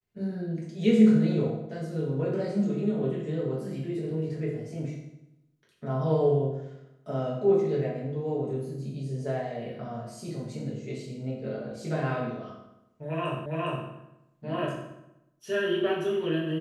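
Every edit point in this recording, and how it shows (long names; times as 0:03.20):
0:13.46: the same again, the last 0.41 s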